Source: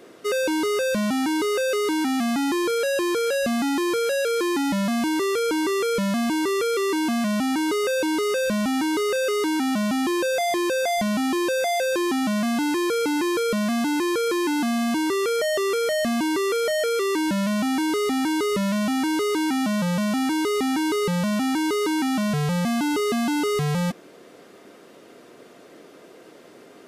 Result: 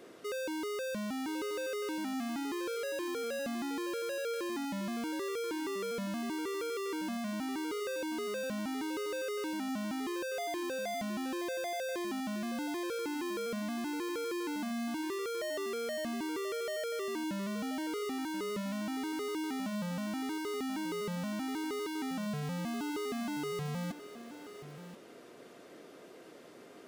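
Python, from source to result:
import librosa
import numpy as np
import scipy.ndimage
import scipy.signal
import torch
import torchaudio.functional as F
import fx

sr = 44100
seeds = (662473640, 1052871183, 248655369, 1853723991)

p1 = 10.0 ** (-30.5 / 20.0) * np.tanh(x / 10.0 ** (-30.5 / 20.0))
p2 = p1 + fx.echo_single(p1, sr, ms=1032, db=-12.5, dry=0)
y = p2 * librosa.db_to_amplitude(-6.0)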